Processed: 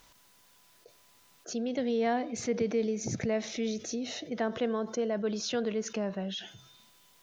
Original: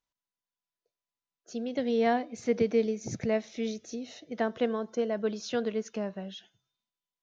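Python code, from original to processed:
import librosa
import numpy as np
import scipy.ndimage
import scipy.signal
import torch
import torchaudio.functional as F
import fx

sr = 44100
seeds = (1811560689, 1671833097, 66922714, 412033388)

y = fx.env_flatten(x, sr, amount_pct=50)
y = F.gain(torch.from_numpy(y), -4.5).numpy()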